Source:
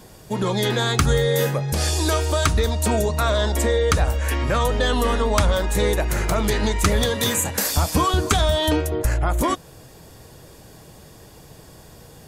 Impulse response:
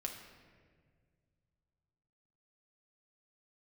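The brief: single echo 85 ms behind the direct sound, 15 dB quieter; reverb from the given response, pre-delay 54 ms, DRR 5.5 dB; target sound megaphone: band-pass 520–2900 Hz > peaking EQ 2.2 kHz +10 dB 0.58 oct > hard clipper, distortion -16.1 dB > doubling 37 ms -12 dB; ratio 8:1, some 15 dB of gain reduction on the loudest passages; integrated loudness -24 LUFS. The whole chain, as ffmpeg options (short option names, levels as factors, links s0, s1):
-filter_complex "[0:a]acompressor=threshold=0.0316:ratio=8,aecho=1:1:85:0.178,asplit=2[s0][s1];[1:a]atrim=start_sample=2205,adelay=54[s2];[s1][s2]afir=irnorm=-1:irlink=0,volume=0.596[s3];[s0][s3]amix=inputs=2:normalize=0,highpass=520,lowpass=2900,equalizer=f=2200:t=o:w=0.58:g=10,asoftclip=type=hard:threshold=0.0335,asplit=2[s4][s5];[s5]adelay=37,volume=0.251[s6];[s4][s6]amix=inputs=2:normalize=0,volume=3.76"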